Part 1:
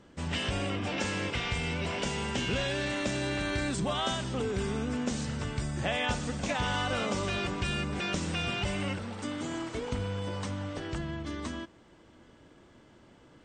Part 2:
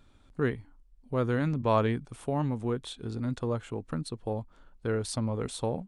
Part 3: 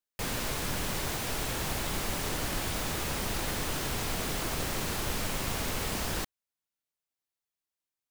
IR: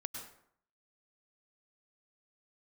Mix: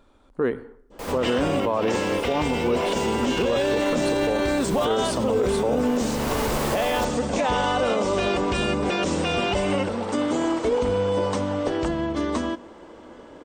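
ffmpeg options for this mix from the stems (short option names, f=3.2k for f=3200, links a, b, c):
-filter_complex "[0:a]adynamicequalizer=threshold=0.00501:dfrequency=1400:dqfactor=0.81:tfrequency=1400:tqfactor=0.81:attack=5:release=100:ratio=0.375:range=2:mode=cutabove:tftype=bell,adelay=900,volume=2.5dB,asplit=2[a][b];[b]volume=-17.5dB[c];[1:a]volume=-0.5dB,asplit=3[d][e][f];[e]volume=-14dB[g];[2:a]adelay=800,volume=-1dB,asplit=2[h][i];[i]volume=-20dB[j];[f]apad=whole_len=392661[k];[h][k]sidechaincompress=threshold=-59dB:ratio=4:attack=16:release=292[l];[3:a]atrim=start_sample=2205[m];[c][g][j]amix=inputs=3:normalize=0[n];[n][m]afir=irnorm=-1:irlink=0[o];[a][d][l][o]amix=inputs=4:normalize=0,equalizer=f=125:t=o:w=1:g=-8,equalizer=f=250:t=o:w=1:g=4,equalizer=f=500:t=o:w=1:g=9,equalizer=f=1k:t=o:w=1:g=7,dynaudnorm=f=290:g=7:m=4dB,alimiter=limit=-14dB:level=0:latency=1:release=36"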